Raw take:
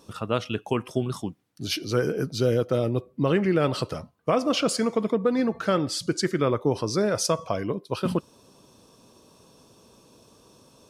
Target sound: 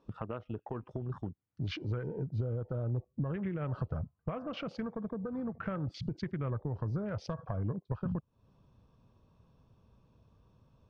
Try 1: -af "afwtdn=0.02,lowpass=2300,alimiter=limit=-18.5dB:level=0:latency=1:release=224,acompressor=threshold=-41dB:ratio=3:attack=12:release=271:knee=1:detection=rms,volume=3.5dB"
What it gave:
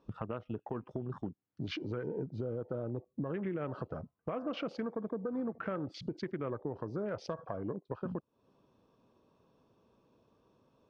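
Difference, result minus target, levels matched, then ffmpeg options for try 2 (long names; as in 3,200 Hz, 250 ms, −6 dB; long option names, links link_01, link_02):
125 Hz band −6.0 dB
-af "afwtdn=0.02,lowpass=2300,alimiter=limit=-18.5dB:level=0:latency=1:release=224,acompressor=threshold=-41dB:ratio=3:attack=12:release=271:knee=1:detection=rms,asubboost=boost=9:cutoff=110,volume=3.5dB"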